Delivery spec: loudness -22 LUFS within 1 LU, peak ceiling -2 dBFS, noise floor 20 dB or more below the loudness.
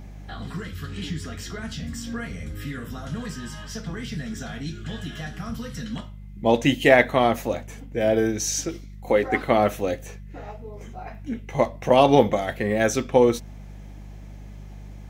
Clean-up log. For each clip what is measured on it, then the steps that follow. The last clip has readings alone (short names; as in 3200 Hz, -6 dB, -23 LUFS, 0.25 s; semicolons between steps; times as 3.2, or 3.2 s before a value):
hum 50 Hz; harmonics up to 200 Hz; hum level -37 dBFS; loudness -24.0 LUFS; peak -1.0 dBFS; loudness target -22.0 LUFS
-> de-hum 50 Hz, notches 4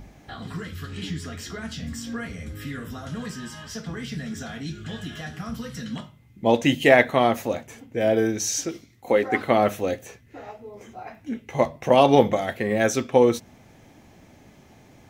hum none; loudness -24.0 LUFS; peak -1.0 dBFS; loudness target -22.0 LUFS
-> gain +2 dB; limiter -2 dBFS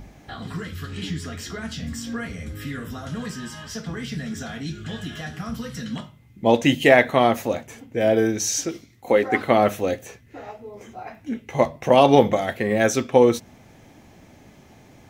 loudness -22.5 LUFS; peak -2.0 dBFS; noise floor -51 dBFS